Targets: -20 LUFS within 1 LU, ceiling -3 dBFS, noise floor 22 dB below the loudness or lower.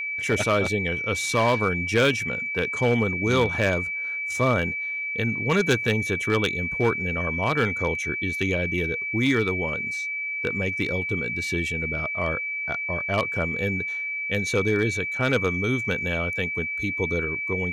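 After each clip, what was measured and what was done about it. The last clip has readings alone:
clipped 0.5%; flat tops at -14.0 dBFS; steady tone 2300 Hz; tone level -27 dBFS; loudness -24.0 LUFS; peak -14.0 dBFS; loudness target -20.0 LUFS
-> clip repair -14 dBFS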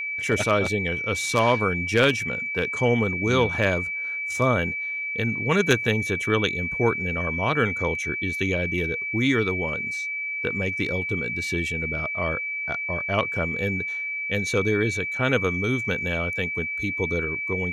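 clipped 0.0%; steady tone 2300 Hz; tone level -27 dBFS
-> notch 2300 Hz, Q 30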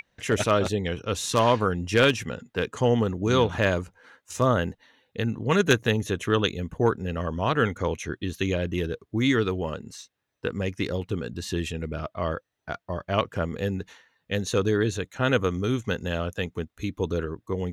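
steady tone none; loudness -26.5 LUFS; peak -5.0 dBFS; loudness target -20.0 LUFS
-> gain +6.5 dB; limiter -3 dBFS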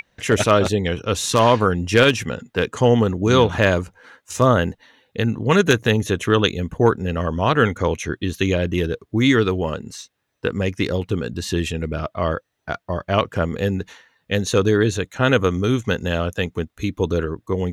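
loudness -20.0 LUFS; peak -3.0 dBFS; noise floor -72 dBFS

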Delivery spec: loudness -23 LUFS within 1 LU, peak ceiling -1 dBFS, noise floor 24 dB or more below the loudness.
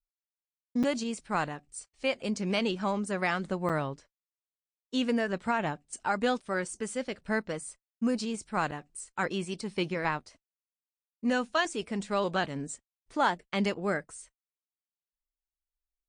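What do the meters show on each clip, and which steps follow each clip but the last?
dropouts 3; longest dropout 6.3 ms; loudness -31.5 LUFS; peak -12.5 dBFS; loudness target -23.0 LUFS
-> interpolate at 0.83/3.69/8.71, 6.3 ms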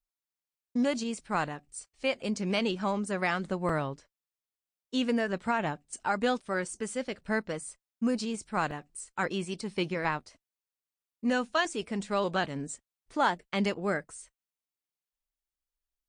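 dropouts 0; loudness -31.5 LUFS; peak -12.5 dBFS; loudness target -23.0 LUFS
-> gain +8.5 dB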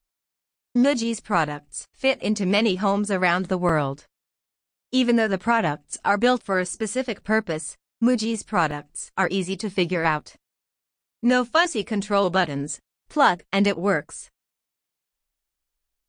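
loudness -23.0 LUFS; peak -4.0 dBFS; noise floor -85 dBFS

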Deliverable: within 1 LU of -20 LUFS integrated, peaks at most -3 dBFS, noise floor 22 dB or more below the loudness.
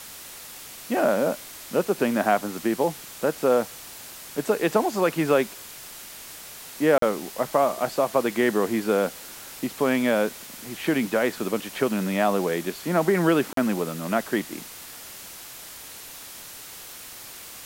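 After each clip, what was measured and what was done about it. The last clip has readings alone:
dropouts 2; longest dropout 43 ms; noise floor -42 dBFS; noise floor target -47 dBFS; loudness -24.5 LUFS; peak -6.5 dBFS; loudness target -20.0 LUFS
-> interpolate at 6.98/13.53, 43 ms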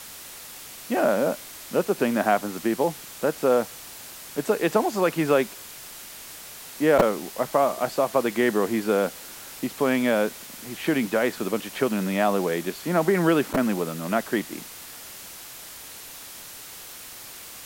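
dropouts 0; noise floor -42 dBFS; noise floor target -47 dBFS
-> noise print and reduce 6 dB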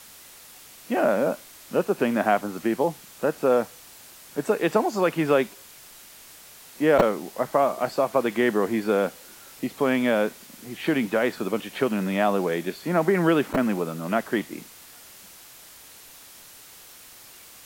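noise floor -48 dBFS; loudness -24.5 LUFS; peak -4.0 dBFS; loudness target -20.0 LUFS
-> gain +4.5 dB; limiter -3 dBFS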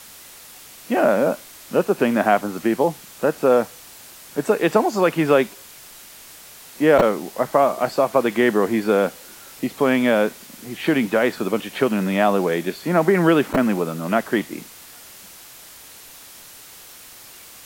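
loudness -20.0 LUFS; peak -3.0 dBFS; noise floor -43 dBFS

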